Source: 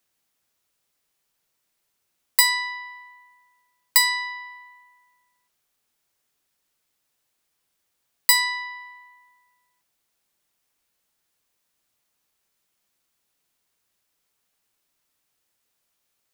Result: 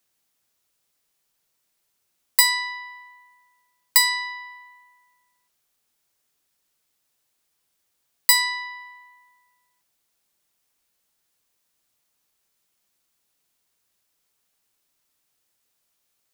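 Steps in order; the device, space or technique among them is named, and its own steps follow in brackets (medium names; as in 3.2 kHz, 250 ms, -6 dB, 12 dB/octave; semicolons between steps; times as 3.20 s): exciter from parts (in parallel at -11 dB: high-pass 2.8 kHz 12 dB/octave + saturation -18 dBFS, distortion -7 dB)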